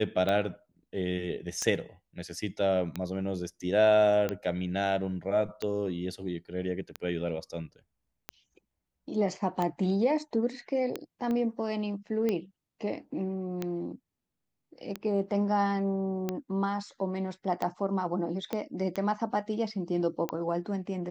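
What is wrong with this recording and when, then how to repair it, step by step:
tick 45 rpm -17 dBFS
11.31 s: pop -22 dBFS
18.53 s: pop -18 dBFS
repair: de-click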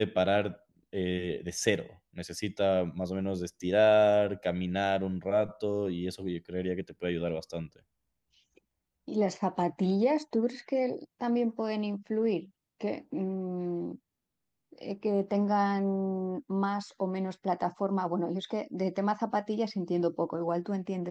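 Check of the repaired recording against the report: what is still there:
11.31 s: pop
18.53 s: pop

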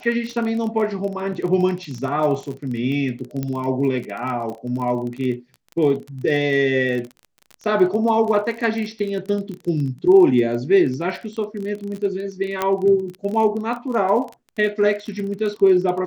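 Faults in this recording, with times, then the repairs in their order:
crackle 28 per s -27 dBFS
3.43 s: pop -13 dBFS
12.62 s: pop -7 dBFS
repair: de-click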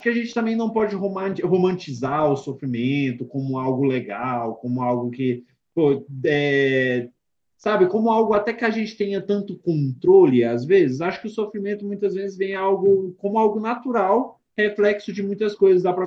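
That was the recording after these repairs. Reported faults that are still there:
nothing left

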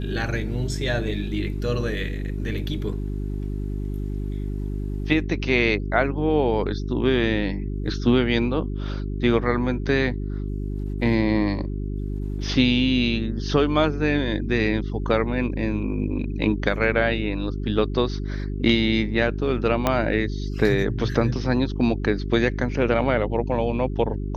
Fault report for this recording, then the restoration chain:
hum 50 Hz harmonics 8 -28 dBFS
19.87 s: pop -6 dBFS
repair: de-click; de-hum 50 Hz, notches 8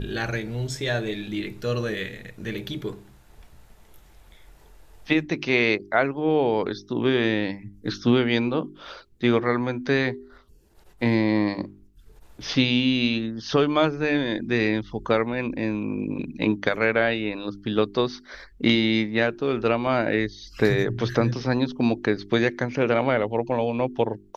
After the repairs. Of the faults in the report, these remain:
19.87 s: pop

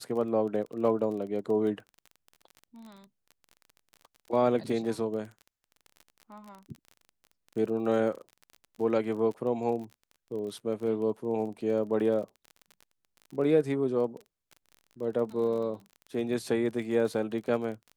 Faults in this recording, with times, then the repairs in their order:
crackle 30 per s -38 dBFS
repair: de-click

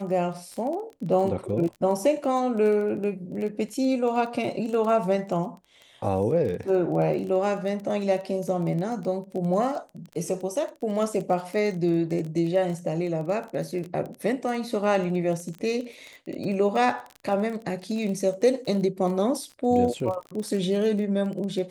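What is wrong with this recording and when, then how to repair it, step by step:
crackle 20 per s -31 dBFS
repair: de-click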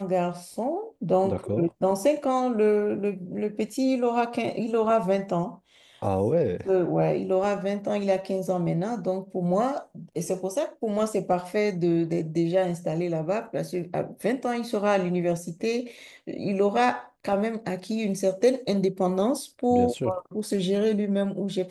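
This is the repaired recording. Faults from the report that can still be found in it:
nothing left

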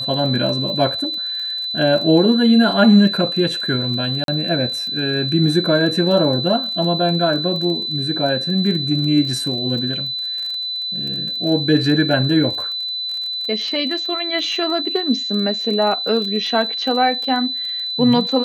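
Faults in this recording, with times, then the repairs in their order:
crackle 27 per s -26 dBFS
whine 4 kHz -22 dBFS
4.24–4.28 s: dropout 42 ms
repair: de-click; band-stop 4 kHz, Q 30; interpolate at 4.24 s, 42 ms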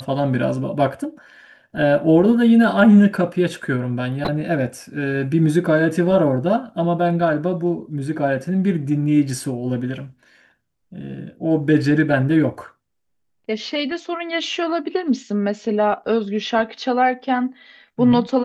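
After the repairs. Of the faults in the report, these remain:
nothing left

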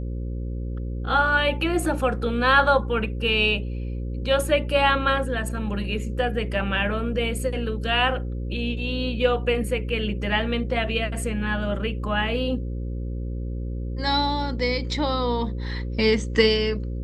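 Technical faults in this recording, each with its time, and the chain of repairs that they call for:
buzz 60 Hz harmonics 9 -29 dBFS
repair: de-hum 60 Hz, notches 9

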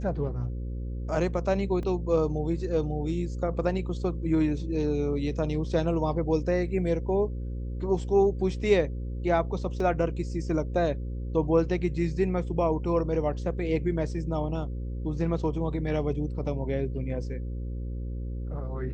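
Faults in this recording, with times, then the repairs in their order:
buzz 60 Hz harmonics 9 -33 dBFS
1.83 s: dropout 2.2 ms
9.80 s: dropout 2.5 ms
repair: de-hum 60 Hz, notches 9; interpolate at 1.83 s, 2.2 ms; interpolate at 9.80 s, 2.5 ms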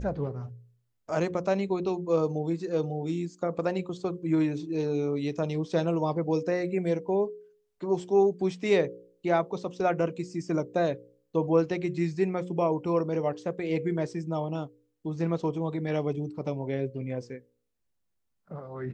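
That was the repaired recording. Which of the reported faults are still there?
nothing left

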